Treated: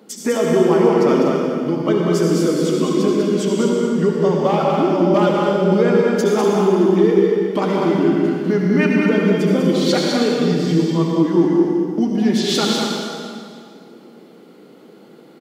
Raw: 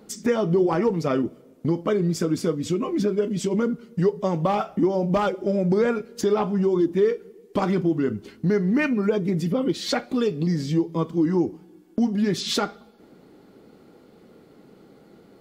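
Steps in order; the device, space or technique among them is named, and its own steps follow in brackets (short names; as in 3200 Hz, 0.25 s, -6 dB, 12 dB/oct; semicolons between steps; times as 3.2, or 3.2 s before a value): stadium PA (HPF 170 Hz 24 dB/oct; bell 3100 Hz +4 dB 0.31 oct; loudspeakers at several distances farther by 68 m -5 dB, 84 m -9 dB; reverb RT60 2.2 s, pre-delay 61 ms, DRR -0.5 dB); gain +2.5 dB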